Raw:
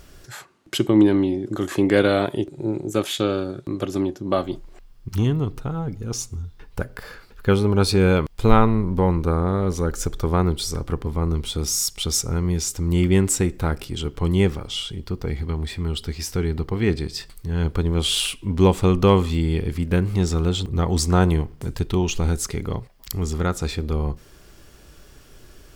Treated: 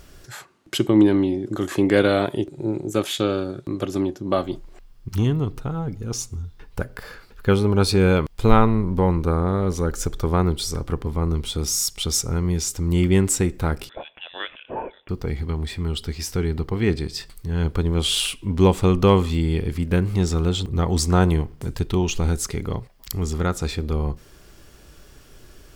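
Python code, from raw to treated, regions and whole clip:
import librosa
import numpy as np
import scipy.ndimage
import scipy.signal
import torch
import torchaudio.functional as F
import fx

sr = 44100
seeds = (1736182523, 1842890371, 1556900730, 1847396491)

y = fx.chain(x, sr, fx.highpass(hz=1000.0, slope=12),
    fx.freq_invert(carrier_hz=3800), at=(13.89, 15.09))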